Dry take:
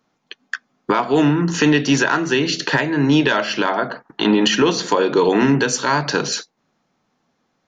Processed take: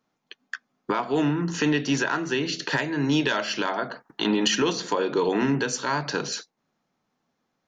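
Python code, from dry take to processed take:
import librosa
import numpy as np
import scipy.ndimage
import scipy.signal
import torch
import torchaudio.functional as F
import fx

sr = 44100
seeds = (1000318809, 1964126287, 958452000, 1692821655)

y = fx.high_shelf(x, sr, hz=5800.0, db=11.5, at=(2.7, 4.73))
y = y * librosa.db_to_amplitude(-8.0)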